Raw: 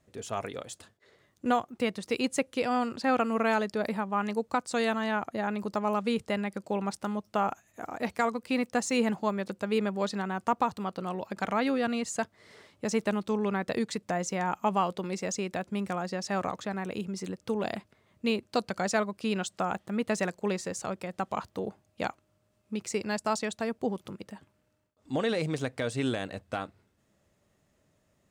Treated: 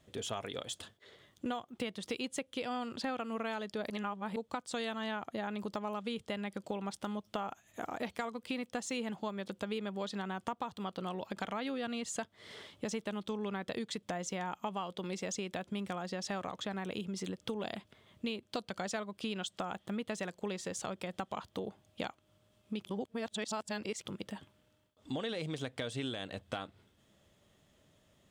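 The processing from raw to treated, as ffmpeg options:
ffmpeg -i in.wav -filter_complex "[0:a]asplit=5[link_01][link_02][link_03][link_04][link_05];[link_01]atrim=end=3.902[link_06];[link_02]atrim=start=3.898:end=4.362,asetpts=PTS-STARTPTS,areverse[link_07];[link_03]atrim=start=4.358:end=22.852[link_08];[link_04]atrim=start=22.848:end=24.022,asetpts=PTS-STARTPTS,areverse[link_09];[link_05]atrim=start=24.018[link_10];[link_06][link_07]acrossfade=duration=0.004:curve1=hsin:curve2=hsin[link_11];[link_11][link_08]acrossfade=duration=0.004:curve1=hsin:curve2=hsin[link_12];[link_12][link_09]acrossfade=duration=0.004:curve1=hsin:curve2=hsin[link_13];[link_13][link_10]acrossfade=duration=0.004:curve1=hsin:curve2=hsin,equalizer=frequency=3300:width_type=o:width=0.35:gain=11,acompressor=threshold=-38dB:ratio=5,volume=2dB" out.wav

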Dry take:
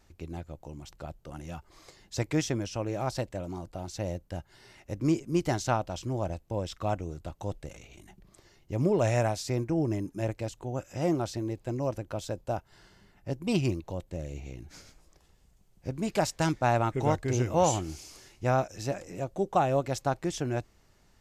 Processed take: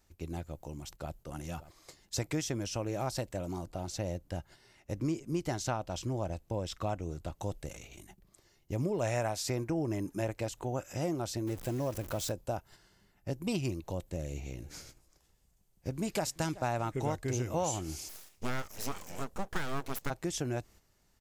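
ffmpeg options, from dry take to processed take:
ffmpeg -i in.wav -filter_complex "[0:a]asplit=2[link_01][link_02];[link_02]afade=type=in:start_time=0.76:duration=0.01,afade=type=out:start_time=1.18:duration=0.01,aecho=0:1:580|1160|1740|2320|2900|3480|4060|4640|5220|5800:0.158489|0.118867|0.0891502|0.0668627|0.050147|0.0376103|0.0282077|0.0211558|0.0158668|0.0119001[link_03];[link_01][link_03]amix=inputs=2:normalize=0,asettb=1/sr,asplit=3[link_04][link_05][link_06];[link_04]atrim=end=3.654[link_07];[link_05]atrim=start=3.65:end=7.41,asetpts=PTS-STARTPTS,afade=type=in:duration=0.004:curve=qsin,afade=type=out:start_time=3.756:duration=0.004:curve=qsin,highshelf=frequency=8500:gain=-7.5[link_08];[link_06]atrim=start=7.406[link_09];[link_07][link_08]acrossfade=duration=0.004:curve1=hsin:curve2=qsin[link_10];[link_10][link_09]acrossfade=duration=0.004:curve1=qsin:curve2=hsin,asettb=1/sr,asplit=3[link_11][link_12][link_13];[link_11]atrim=end=9.034[link_14];[link_12]atrim=start=9.03:end=10.93,asetpts=PTS-STARTPTS,afade=type=in:duration=0.004:curve=qsin,afade=type=out:start_time=1.896:duration=0.004:curve=qsin,equalizer=frequency=1200:width=0.41:gain=5[link_15];[link_13]atrim=start=10.926[link_16];[link_14][link_15]acrossfade=duration=0.004:curve1=hsin:curve2=qsin[link_17];[link_17][link_16]acrossfade=duration=0.004:curve1=qsin:curve2=hsin,asettb=1/sr,asplit=3[link_18][link_19][link_20];[link_18]atrim=end=11.474[link_21];[link_19]atrim=start=11.47:end=12.32,asetpts=PTS-STARTPTS,afade=type=in:duration=0.004:curve=qsin,afade=type=out:start_time=0.846:duration=0.004:curve=qsin,aeval=exprs='val(0)+0.5*0.00841*sgn(val(0))':channel_layout=same[link_22];[link_20]atrim=start=12.316[link_23];[link_21][link_22]acrossfade=duration=0.004:curve1=hsin:curve2=qsin[link_24];[link_24][link_23]acrossfade=duration=0.004:curve1=qsin:curve2=hsin,asettb=1/sr,asplit=3[link_25][link_26][link_27];[link_25]atrim=end=14.154[link_28];[link_26]atrim=start=14.15:end=16.96,asetpts=PTS-STARTPTS,afade=type=in:duration=0.004:curve=qsin,afade=type=out:start_time=2.806:duration=0.004:curve=qsin,aecho=1:1:378:0.0944,atrim=end_sample=123921[link_29];[link_27]atrim=start=16.956[link_30];[link_28][link_29]acrossfade=duration=0.004:curve1=hsin:curve2=qsin[link_31];[link_31][link_30]acrossfade=duration=0.004:curve1=qsin:curve2=hsin,asplit=3[link_32][link_33][link_34];[link_32]afade=type=out:start_time=18.08:duration=0.02[link_35];[link_33]aeval=exprs='abs(val(0))':channel_layout=same,afade=type=in:start_time=18.08:duration=0.02,afade=type=out:start_time=20.09:duration=0.02[link_36];[link_34]afade=type=in:start_time=20.09:duration=0.02[link_37];[link_35][link_36][link_37]amix=inputs=3:normalize=0,agate=range=-8dB:threshold=-52dB:ratio=16:detection=peak,highshelf=frequency=7800:gain=11,acompressor=threshold=-31dB:ratio=3" out.wav

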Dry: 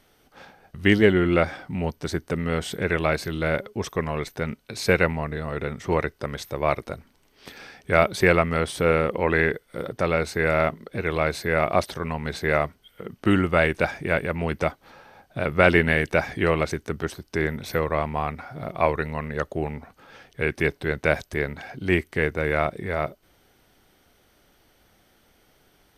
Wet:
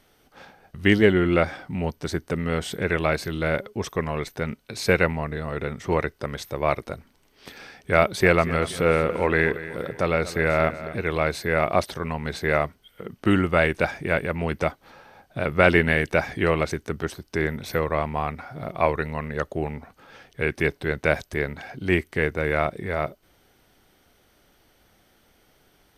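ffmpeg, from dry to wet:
ffmpeg -i in.wav -filter_complex "[0:a]asettb=1/sr,asplit=3[link_01][link_02][link_03];[link_01]atrim=end=8.014[link_04];[link_02]atrim=start=8.01:end=10.95,asetpts=PTS-STARTPTS,afade=type=in:duration=0.004:curve=qsin,afade=type=out:start_time=2.936:duration=0.004:curve=qsin,aecho=1:1:239|478|717|956:0.188|0.0829|0.0365|0.016,atrim=end_sample=129654[link_05];[link_03]atrim=start=10.946[link_06];[link_04][link_05]acrossfade=duration=0.004:curve1=hsin:curve2=qsin[link_07];[link_07][link_06]acrossfade=duration=0.004:curve1=qsin:curve2=hsin" out.wav

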